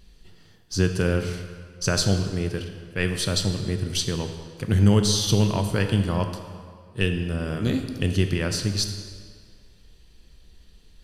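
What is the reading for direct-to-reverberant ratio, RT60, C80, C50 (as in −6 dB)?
6.0 dB, 1.9 s, 8.5 dB, 7.5 dB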